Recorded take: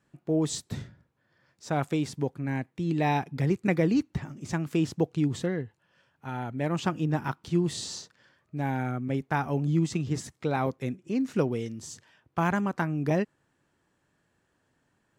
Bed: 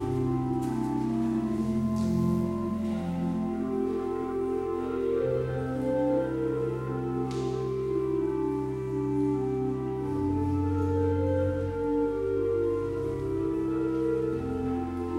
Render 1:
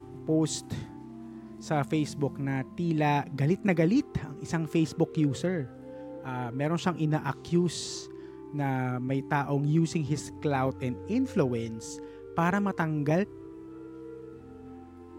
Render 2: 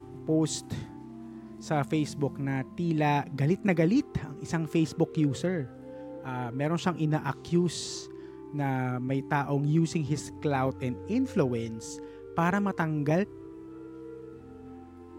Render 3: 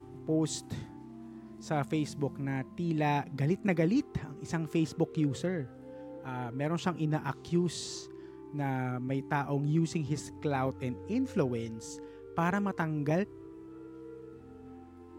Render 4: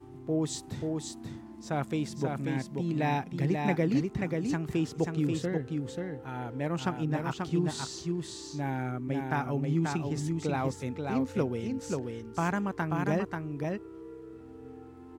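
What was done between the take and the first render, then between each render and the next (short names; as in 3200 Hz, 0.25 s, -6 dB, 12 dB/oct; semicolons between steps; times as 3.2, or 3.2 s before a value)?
add bed -16 dB
nothing audible
gain -3.5 dB
echo 0.536 s -4 dB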